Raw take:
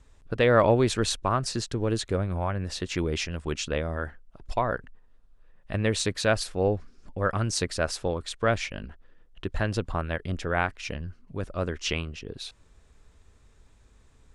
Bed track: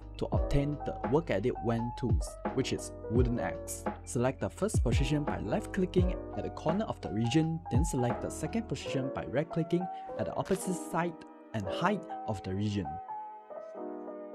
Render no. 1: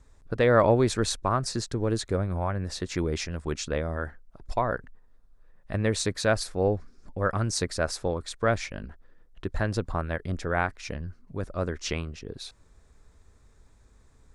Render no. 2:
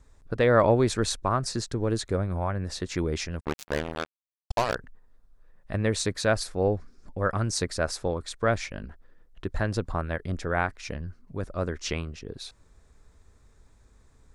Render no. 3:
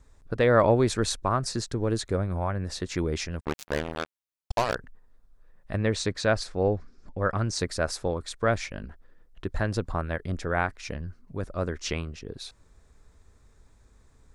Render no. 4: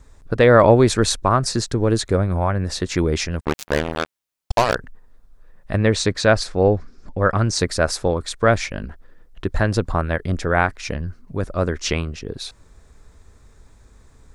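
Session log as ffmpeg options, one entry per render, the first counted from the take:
-af "equalizer=f=2900:w=2.7:g=-8.5"
-filter_complex "[0:a]asplit=3[s0][s1][s2];[s0]afade=t=out:st=3.39:d=0.02[s3];[s1]acrusher=bits=3:mix=0:aa=0.5,afade=t=in:st=3.39:d=0.02,afade=t=out:st=4.74:d=0.02[s4];[s2]afade=t=in:st=4.74:d=0.02[s5];[s3][s4][s5]amix=inputs=3:normalize=0"
-filter_complex "[0:a]asettb=1/sr,asplit=3[s0][s1][s2];[s0]atrim=end=5.774[s3];[s1]atrim=start=5.77:end=7.59,asetpts=PTS-STARTPTS,afade=t=in:d=0.004:c=qsin,afade=t=out:st=1.816:d=0.004:c=qsin,lowpass=6500[s4];[s2]atrim=start=7.586[s5];[s3][s4]acrossfade=d=0.004:c1=hsin:c2=qsin[s6];[s6][s5]acrossfade=d=0.004:c1=qsin:c2=hsin"
-af "volume=2.66,alimiter=limit=0.891:level=0:latency=1"

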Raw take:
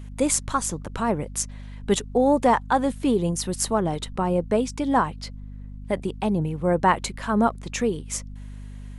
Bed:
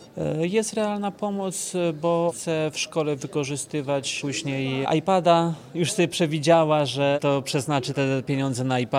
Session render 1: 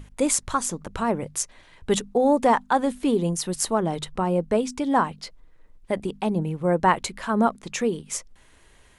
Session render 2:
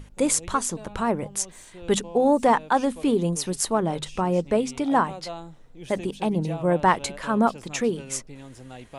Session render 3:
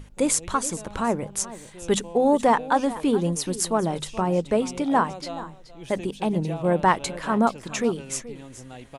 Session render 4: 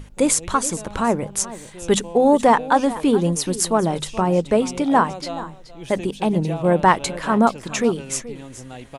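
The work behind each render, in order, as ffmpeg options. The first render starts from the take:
-af "bandreject=f=50:t=h:w=6,bandreject=f=100:t=h:w=6,bandreject=f=150:t=h:w=6,bandreject=f=200:t=h:w=6,bandreject=f=250:t=h:w=6"
-filter_complex "[1:a]volume=0.119[s0];[0:a][s0]amix=inputs=2:normalize=0"
-af "aecho=1:1:427:0.158"
-af "volume=1.68,alimiter=limit=0.891:level=0:latency=1"

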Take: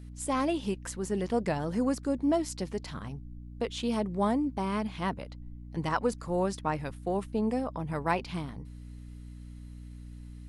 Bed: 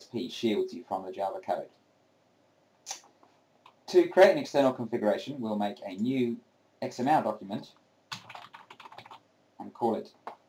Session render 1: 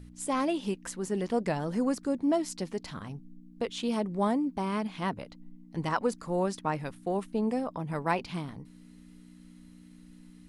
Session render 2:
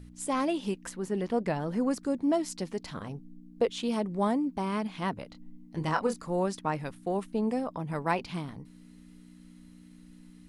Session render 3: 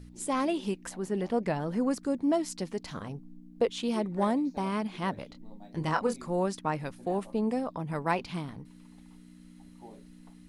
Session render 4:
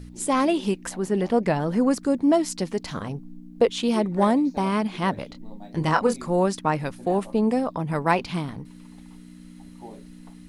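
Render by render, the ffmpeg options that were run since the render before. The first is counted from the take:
-af "bandreject=f=60:t=h:w=4,bandreject=f=120:t=h:w=4"
-filter_complex "[0:a]asettb=1/sr,asplit=3[s0][s1][s2];[s0]atrim=end=0.894[s3];[s1]atrim=start=0.89:end=1.91,asetpts=PTS-STARTPTS,afade=t=in:d=0.004:c=qsin,afade=t=out:st=1.016:d=0.004:c=qsin,equalizer=f=7500:t=o:w=1.4:g=-7[s4];[s2]atrim=start=1.906[s5];[s3][s4]acrossfade=d=0.004:c1=hsin:c2=qsin[s6];[s6][s5]acrossfade=d=0.004:c1=qsin:c2=hsin,asettb=1/sr,asplit=3[s7][s8][s9];[s7]atrim=end=2.944[s10];[s8]atrim=start=2.94:end=3.68,asetpts=PTS-STARTPTS,afade=t=in:d=0.004:c=qsin,afade=t=out:st=0.736:d=0.004:c=qsin,equalizer=f=500:t=o:w=1.1:g=7.5[s11];[s9]atrim=start=3.676[s12];[s10][s11]acrossfade=d=0.004:c1=hsin:c2=qsin[s13];[s13][s12]acrossfade=d=0.004:c1=qsin:c2=hsin,asettb=1/sr,asplit=3[s14][s15][s16];[s14]atrim=end=5.274[s17];[s15]atrim=start=5.27:end=6.2,asetpts=PTS-STARTPTS,afade=t=in:d=0.004:c=qsin,afade=t=out:st=0.926:d=0.004:c=qsin,asplit=2[s18][s19];[s19]adelay=26,volume=0.447[s20];[s18][s20]amix=inputs=2:normalize=0,atrim=end_sample=41013[s21];[s16]atrim=start=6.196[s22];[s17][s21]acrossfade=d=0.004:c1=hsin:c2=qsin[s23];[s23][s22]acrossfade=d=0.004:c1=qsin:c2=hsin"
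-filter_complex "[1:a]volume=0.0794[s0];[0:a][s0]amix=inputs=2:normalize=0"
-af "volume=2.37"

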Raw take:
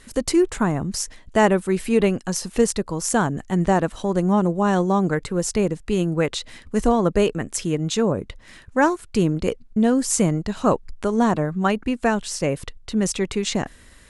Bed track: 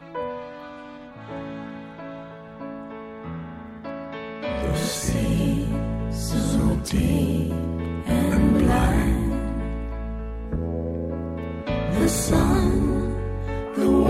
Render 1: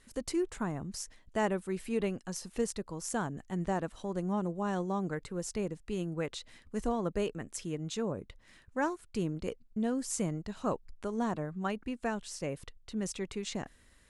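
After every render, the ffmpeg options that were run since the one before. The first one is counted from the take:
-af "volume=0.2"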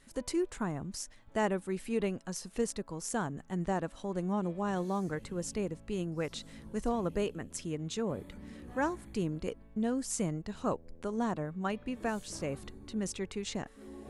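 -filter_complex "[1:a]volume=0.0316[s0];[0:a][s0]amix=inputs=2:normalize=0"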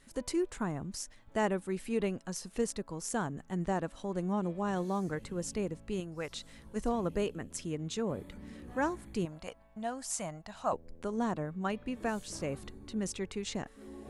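-filter_complex "[0:a]asettb=1/sr,asplit=3[s0][s1][s2];[s0]atrim=end=6.004[s3];[s1]atrim=start=6:end=6.76,asetpts=PTS-STARTPTS,afade=t=in:d=0.004:c=qsin,afade=t=out:st=0.756:d=0.004:c=qsin,equalizer=f=220:w=0.57:g=-7.5[s4];[s2]atrim=start=6.756[s5];[s3][s4]acrossfade=d=0.004:c1=hsin:c2=qsin[s6];[s6][s5]acrossfade=d=0.004:c1=qsin:c2=hsin,asettb=1/sr,asplit=3[s7][s8][s9];[s7]atrim=end=9.254[s10];[s8]atrim=start=9.25:end=10.73,asetpts=PTS-STARTPTS,afade=t=in:d=0.004:c=qsin,afade=t=out:st=1.476:d=0.004:c=qsin,lowshelf=f=530:t=q:w=3:g=-8.5[s11];[s9]atrim=start=10.726[s12];[s10][s11]acrossfade=d=0.004:c1=hsin:c2=qsin[s13];[s13][s12]acrossfade=d=0.004:c1=qsin:c2=hsin"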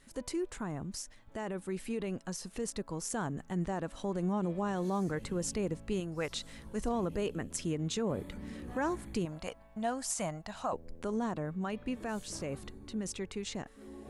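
-af "alimiter=level_in=1.58:limit=0.0631:level=0:latency=1:release=48,volume=0.631,dynaudnorm=f=360:g=17:m=1.58"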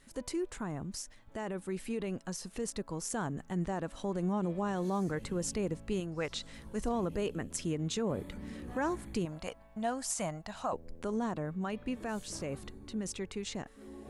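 -filter_complex "[0:a]asettb=1/sr,asplit=3[s0][s1][s2];[s0]atrim=end=6.064[s3];[s1]atrim=start=6.06:end=6.54,asetpts=PTS-STARTPTS,afade=t=in:d=0.004:c=qsin,afade=t=out:st=0.476:d=0.004:c=qsin,lowpass=7600[s4];[s2]atrim=start=6.536[s5];[s3][s4]acrossfade=d=0.004:c1=hsin:c2=qsin[s6];[s6][s5]acrossfade=d=0.004:c1=qsin:c2=hsin"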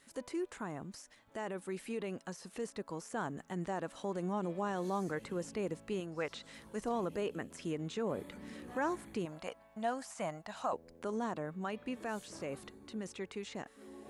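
-filter_complex "[0:a]acrossover=split=2600[s0][s1];[s1]acompressor=threshold=0.00316:ratio=4:attack=1:release=60[s2];[s0][s2]amix=inputs=2:normalize=0,highpass=f=320:p=1"

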